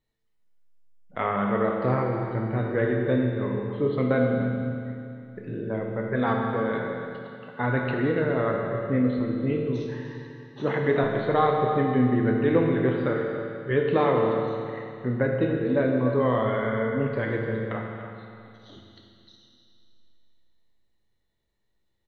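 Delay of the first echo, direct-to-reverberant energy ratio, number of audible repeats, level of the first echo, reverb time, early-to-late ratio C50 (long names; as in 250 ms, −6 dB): 296 ms, −0.5 dB, 1, −12.0 dB, 2.6 s, 1.0 dB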